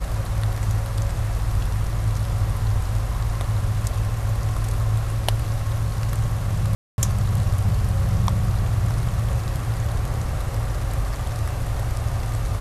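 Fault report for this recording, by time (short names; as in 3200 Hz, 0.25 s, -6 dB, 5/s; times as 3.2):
6.75–6.98 gap 0.231 s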